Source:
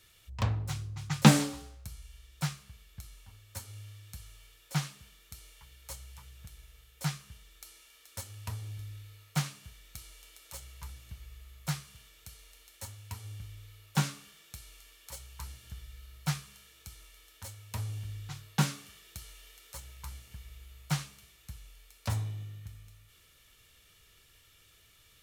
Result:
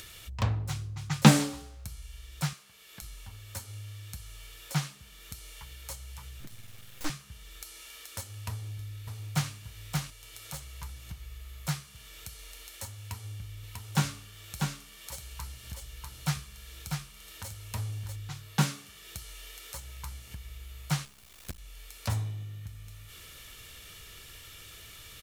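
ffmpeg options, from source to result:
-filter_complex "[0:a]asettb=1/sr,asplit=3[a][b][c];[a]atrim=end=2.534[d];[b]atrim=start=2.53:end=3.02,asetpts=PTS-STARTPTS,afade=t=in:d=0.004:c=qsin,afade=t=out:st=0.486:d=0.004:c=qsin,highpass=310[e];[c]atrim=start=3.016[f];[d][e]acrossfade=d=0.004:c1=hsin:c2=qsin[g];[g][f]acrossfade=d=0.004:c1=qsin:c2=hsin,asettb=1/sr,asplit=3[h][i][j];[h]atrim=end=6.404[k];[i]atrim=start=6.4:end=7.1,asetpts=PTS-STARTPTS,afade=t=in:d=0.004:c=qsin,afade=t=out:st=0.696:d=0.004:c=qsin,aeval=exprs='abs(val(0))':c=same[l];[j]atrim=start=7.096[m];[k][l]acrossfade=d=0.004:c1=hsin:c2=qsin[n];[n][m]acrossfade=d=0.004:c1=qsin:c2=hsin,asplit=2[o][p];[p]afade=t=in:st=8.49:d=0.01,afade=t=out:st=9.52:d=0.01,aecho=0:1:580|1160|1740:0.707946|0.141589|0.0283178[q];[o][q]amix=inputs=2:normalize=0,asettb=1/sr,asplit=3[r][s][t];[r]atrim=end=12.994[u];[s]atrim=start=12.99:end=18.16,asetpts=PTS-STARTPTS,afade=t=in:d=0.004:c=qsin,afade=t=out:st=5.166:d=0.004:c=qsin,aecho=1:1:644:0.596,atrim=end_sample=227997[v];[t]atrim=start=18.156[w];[u][v]acrossfade=d=0.004:c1=hsin:c2=qsin[x];[x][w]acrossfade=d=0.004:c1=qsin:c2=hsin,asettb=1/sr,asplit=3[y][z][aa];[y]atrim=end=21.054[ab];[z]atrim=start=21.05:end=21.59,asetpts=PTS-STARTPTS,afade=t=in:d=0.004:c=qsin,afade=t=out:st=0.536:d=0.004:c=qsin,acrusher=bits=7:dc=4:mix=0:aa=0.000001[ac];[aa]atrim=start=21.586[ad];[ab][ac]acrossfade=d=0.004:c1=hsin:c2=qsin[ae];[ae][ad]acrossfade=d=0.004:c1=qsin:c2=hsin,acompressor=mode=upward:threshold=-38dB:ratio=2.5,volume=1.5dB"

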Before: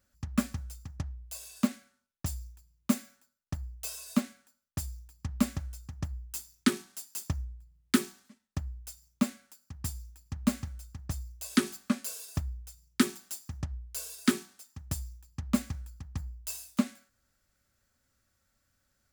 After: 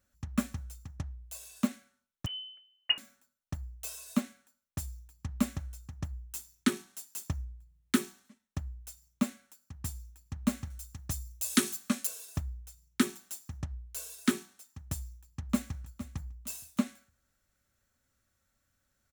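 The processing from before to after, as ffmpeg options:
-filter_complex "[0:a]asettb=1/sr,asplit=3[a][b][c];[a]atrim=end=2.264[d];[b]atrim=start=2.26:end=2.98,asetpts=PTS-STARTPTS,afade=t=in:d=0.004:c=qsin,afade=t=out:st=0.716:d=0.004:c=qsin,lowpass=f=2.6k:t=q:w=0.5098,lowpass=f=2.6k:t=q:w=0.6013,lowpass=f=2.6k:t=q:w=0.9,lowpass=f=2.6k:t=q:w=2.563,afreqshift=-3100[e];[c]atrim=start=2.976[f];[d][e]acrossfade=d=0.004:c1=hsin:c2=qsin[g];[g][f]acrossfade=d=0.004:c1=qsin:c2=hsin,asettb=1/sr,asplit=3[h][i][j];[h]atrim=end=10.704[k];[i]atrim=start=10.7:end=12.07,asetpts=PTS-STARTPTS,afade=t=in:d=0.004:c=qsin,afade=t=out:st=1.366:d=0.004:c=qsin,highshelf=f=3.3k:g=10[l];[j]atrim=start=12.066[m];[k][l]acrossfade=d=0.004:c1=hsin:c2=qsin[n];[n][m]acrossfade=d=0.004:c1=qsin:c2=hsin,asplit=2[o][p];[p]afade=t=in:st=15.03:d=0.01,afade=t=out:st=15.78:d=0.01,aecho=0:1:460|920|1380:0.188365|0.0565095|0.0169528[q];[o][q]amix=inputs=2:normalize=0,bandreject=f=4.8k:w=8.6,volume=-2dB"

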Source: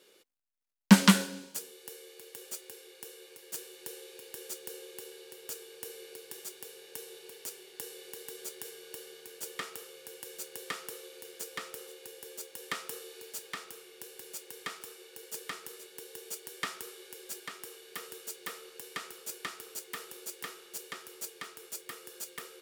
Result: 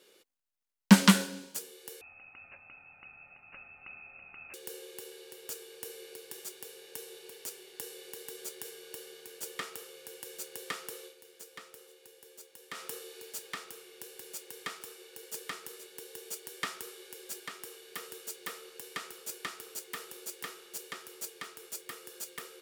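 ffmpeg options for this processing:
-filter_complex "[0:a]asettb=1/sr,asplit=3[a][b][c];[a]atrim=end=2.014[d];[b]atrim=start=2.01:end=4.54,asetpts=PTS-STARTPTS,afade=t=in:d=0.004:c=qsin,afade=t=out:st=2.526:d=0.004:c=qsin,lowpass=f=2.6k:t=q:w=0.5098,lowpass=f=2.6k:t=q:w=0.6013,lowpass=f=2.6k:t=q:w=0.9,lowpass=f=2.6k:t=q:w=2.563,afreqshift=-3000[e];[c]atrim=start=4.536[f];[d][e]acrossfade=d=0.004:c1=hsin:c2=qsin[g];[g][f]acrossfade=d=0.004:c1=qsin:c2=hsin,asplit=3[h][i][j];[h]atrim=end=11.15,asetpts=PTS-STARTPTS,afade=t=out:st=11.01:d=0.14:c=qsin:silence=0.375837[k];[i]atrim=start=11.15:end=12.72,asetpts=PTS-STARTPTS,volume=-8.5dB[l];[j]atrim=start=12.72,asetpts=PTS-STARTPTS,afade=t=in:d=0.14:c=qsin:silence=0.375837[m];[k][l][m]concat=n=3:v=0:a=1"

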